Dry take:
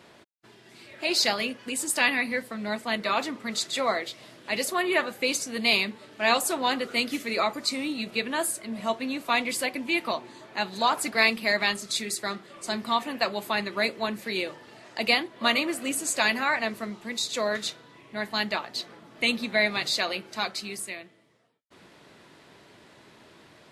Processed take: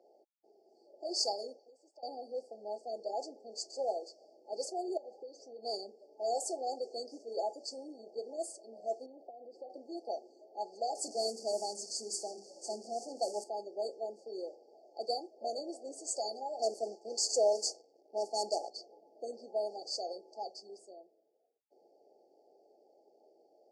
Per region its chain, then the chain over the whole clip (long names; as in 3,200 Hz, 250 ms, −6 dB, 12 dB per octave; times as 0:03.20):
0:01.59–0:02.03: downward compressor, threshold −40 dBFS + band-pass filter 440–6,400 Hz
0:04.97–0:05.63: low-pass filter 4,400 Hz + downward compressor, threshold −33 dBFS
0:09.06–0:09.70: low-pass filter 2,400 Hz + downward compressor 10 to 1, threshold −33 dBFS
0:10.95–0:13.44: spike at every zero crossing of −24.5 dBFS + parametric band 150 Hz +14.5 dB 1.5 octaves + mains-hum notches 50/100/150/200/250/300/350/400/450 Hz
0:16.59–0:18.70: high-pass filter 130 Hz + dynamic equaliser 2,200 Hz, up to +6 dB, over −42 dBFS, Q 0.78 + leveller curve on the samples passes 2
whole clip: brick-wall band-stop 860–4,400 Hz; Chebyshev band-pass filter 420–8,300 Hz, order 3; low-pass that shuts in the quiet parts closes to 2,100 Hz, open at −23 dBFS; level −5.5 dB